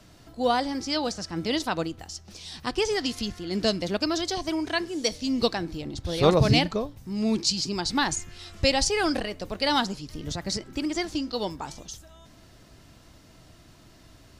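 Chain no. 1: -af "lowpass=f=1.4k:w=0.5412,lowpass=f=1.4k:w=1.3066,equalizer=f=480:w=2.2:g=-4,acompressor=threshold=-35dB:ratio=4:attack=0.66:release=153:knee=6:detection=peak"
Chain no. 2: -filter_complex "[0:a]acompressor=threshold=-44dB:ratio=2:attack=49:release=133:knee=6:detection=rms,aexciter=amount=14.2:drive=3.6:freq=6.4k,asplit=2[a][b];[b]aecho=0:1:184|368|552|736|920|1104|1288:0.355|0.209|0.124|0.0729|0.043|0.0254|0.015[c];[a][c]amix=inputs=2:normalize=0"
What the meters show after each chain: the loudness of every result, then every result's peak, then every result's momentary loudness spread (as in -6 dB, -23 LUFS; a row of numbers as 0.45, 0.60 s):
-40.5, -31.0 LUFS; -27.0, -7.0 dBFS; 17, 17 LU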